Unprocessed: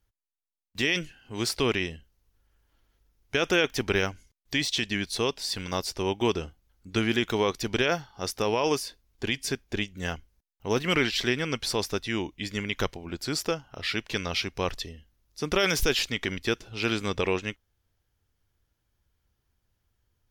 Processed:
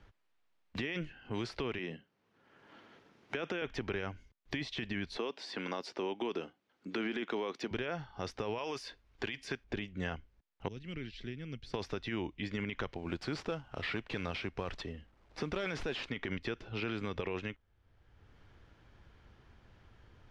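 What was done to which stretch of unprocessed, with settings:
1.78–3.62 HPF 160 Hz 24 dB/oct
5.17–7.71 HPF 230 Hz 24 dB/oct
8.58–9.64 tilt +2.5 dB/oct
10.68–11.74 passive tone stack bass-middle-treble 10-0-1
12.97–16.09 CVSD 64 kbps
whole clip: limiter -23 dBFS; LPF 2700 Hz 12 dB/oct; three-band squash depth 70%; gain -2.5 dB

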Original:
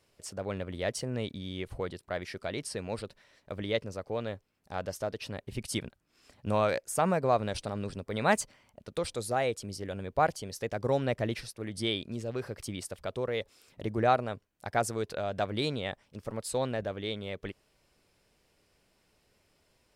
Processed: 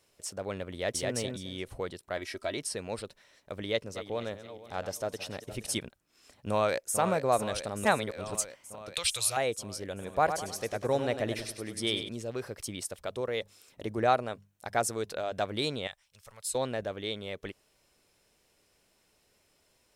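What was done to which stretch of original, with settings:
0.73–1.15 echo throw 0.21 s, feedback 20%, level -2 dB
2.17–2.57 comb 3.1 ms, depth 61%
3.63–5.78 regenerating reverse delay 0.237 s, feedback 56%, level -12 dB
6.5–6.99 echo throw 0.44 s, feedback 75%, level -9 dB
7.85–8.35 reverse
8.94–9.37 EQ curve 120 Hz 0 dB, 230 Hz -21 dB, 830 Hz -4 dB, 1800 Hz +4 dB, 2700 Hz +14 dB, 5900 Hz +8 dB
9.92–12.09 feedback echo 99 ms, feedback 43%, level -8.5 dB
13.02–15.32 notches 50/100/150/200 Hz
15.87–16.55 passive tone stack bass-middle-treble 10-0-10
whole clip: tone controls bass -4 dB, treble +5 dB; notch 4700 Hz, Q 15

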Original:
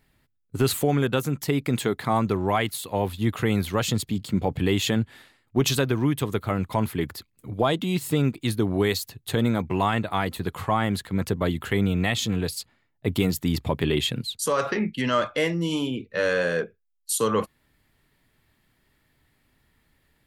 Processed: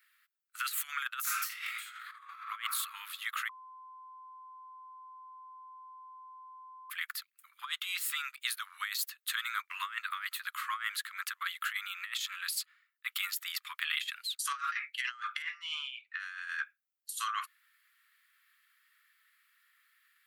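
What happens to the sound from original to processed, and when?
1.22–2.4 reverb throw, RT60 1.3 s, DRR -11 dB
3.49–6.9 bleep 1030 Hz -7.5 dBFS
15.42–16.2 LPF 3500 Hz
whole clip: steep high-pass 1200 Hz 72 dB/oct; bell 5800 Hz -9 dB 2.8 oct; negative-ratio compressor -38 dBFS, ratio -0.5

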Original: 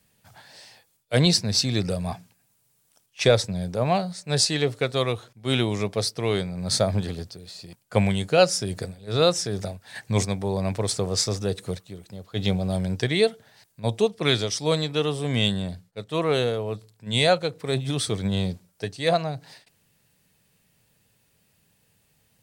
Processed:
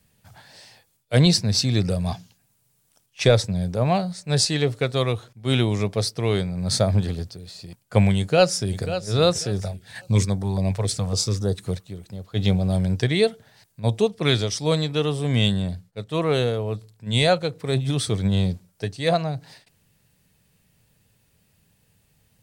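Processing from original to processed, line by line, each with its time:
2.06–2.38 spectral gain 2700–7200 Hz +8 dB
8.18–8.84 echo throw 0.54 s, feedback 25%, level -11 dB
9.6–11.66 stepped notch 7.2 Hz 280–2500 Hz
whole clip: low shelf 150 Hz +8.5 dB

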